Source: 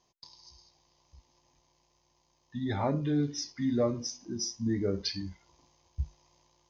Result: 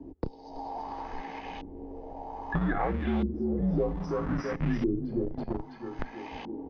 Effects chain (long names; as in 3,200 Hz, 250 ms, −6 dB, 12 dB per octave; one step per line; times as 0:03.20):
comb filter 2.3 ms, depth 34%
frequency shifter −77 Hz
tape delay 328 ms, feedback 37%, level −7.5 dB, low-pass 3,000 Hz
in parallel at −5 dB: comparator with hysteresis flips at −41 dBFS
on the sum: auto-filter low-pass saw up 0.62 Hz 280–3,200 Hz
multiband upward and downward compressor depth 100%